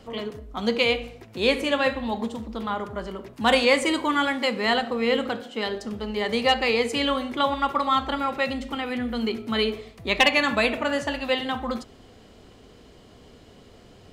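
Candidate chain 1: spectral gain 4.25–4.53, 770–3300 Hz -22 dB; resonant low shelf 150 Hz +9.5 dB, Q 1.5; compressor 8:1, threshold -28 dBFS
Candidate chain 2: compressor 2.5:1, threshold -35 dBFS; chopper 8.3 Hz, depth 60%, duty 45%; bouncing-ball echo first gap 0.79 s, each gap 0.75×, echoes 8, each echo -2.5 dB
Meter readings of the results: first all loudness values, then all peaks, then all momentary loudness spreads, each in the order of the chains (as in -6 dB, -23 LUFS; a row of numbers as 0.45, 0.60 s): -32.5, -34.5 LUFS; -16.5, -18.5 dBFS; 15, 7 LU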